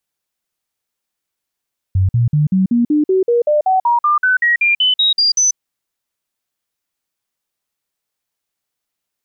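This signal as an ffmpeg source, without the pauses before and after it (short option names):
-f lavfi -i "aevalsrc='0.316*clip(min(mod(t,0.19),0.14-mod(t,0.19))/0.005,0,1)*sin(2*PI*94.3*pow(2,floor(t/0.19)/3)*mod(t,0.19))':d=3.61:s=44100"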